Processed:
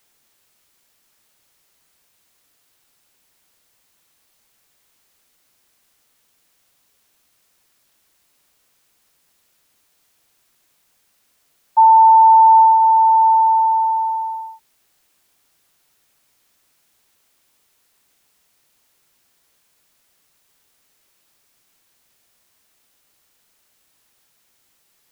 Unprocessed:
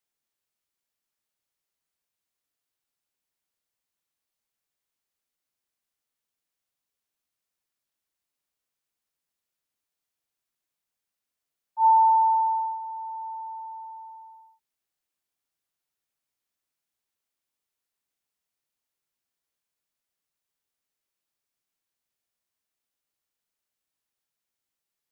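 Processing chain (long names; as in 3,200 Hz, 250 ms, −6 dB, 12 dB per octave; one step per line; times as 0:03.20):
dynamic equaliser 940 Hz, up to −5 dB, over −32 dBFS
boost into a limiter +27.5 dB
level −4.5 dB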